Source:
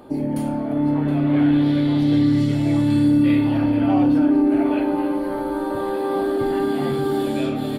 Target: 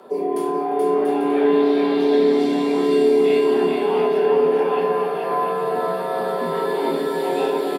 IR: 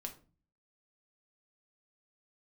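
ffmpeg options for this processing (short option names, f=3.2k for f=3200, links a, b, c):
-filter_complex "[0:a]aecho=1:1:430|688|842.8|935.7|991.4:0.631|0.398|0.251|0.158|0.1,afreqshift=140[a];[1:a]atrim=start_sample=2205,afade=t=out:st=0.19:d=0.01,atrim=end_sample=8820[b];[a][b]afir=irnorm=-1:irlink=0,volume=3dB"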